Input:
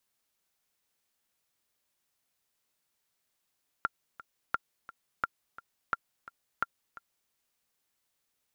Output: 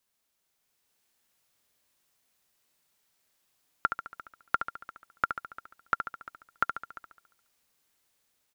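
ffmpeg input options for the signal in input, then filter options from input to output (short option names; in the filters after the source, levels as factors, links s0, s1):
-f lavfi -i "aevalsrc='pow(10,(-14.5-18*gte(mod(t,2*60/173),60/173))/20)*sin(2*PI*1380*mod(t,60/173))*exp(-6.91*mod(t,60/173)/0.03)':d=3.46:s=44100"
-filter_complex "[0:a]asplit=2[s0][s1];[s1]aecho=0:1:70|140|210|280|350|420|490:0.422|0.232|0.128|0.0702|0.0386|0.0212|0.0117[s2];[s0][s2]amix=inputs=2:normalize=0,dynaudnorm=f=180:g=9:m=1.78"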